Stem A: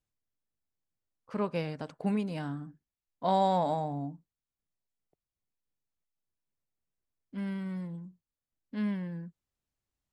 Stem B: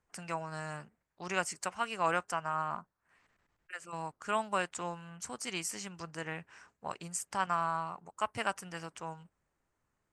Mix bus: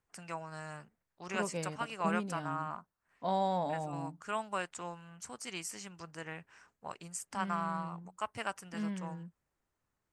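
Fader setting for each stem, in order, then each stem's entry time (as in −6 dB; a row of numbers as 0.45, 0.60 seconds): −5.5, −4.0 decibels; 0.00, 0.00 seconds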